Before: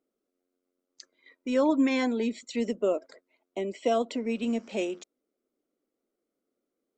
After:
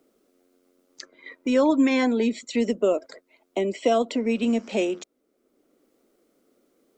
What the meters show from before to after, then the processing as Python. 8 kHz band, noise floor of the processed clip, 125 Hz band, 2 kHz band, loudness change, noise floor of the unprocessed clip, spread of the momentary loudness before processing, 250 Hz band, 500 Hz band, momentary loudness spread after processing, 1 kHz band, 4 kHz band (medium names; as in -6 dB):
+5.5 dB, -71 dBFS, no reading, +5.0 dB, +4.5 dB, -85 dBFS, 11 LU, +5.0 dB, +5.0 dB, 13 LU, +4.5 dB, +5.0 dB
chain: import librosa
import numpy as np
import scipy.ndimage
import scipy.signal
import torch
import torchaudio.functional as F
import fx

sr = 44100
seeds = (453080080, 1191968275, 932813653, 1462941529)

y = fx.band_squash(x, sr, depth_pct=40)
y = y * 10.0 ** (5.5 / 20.0)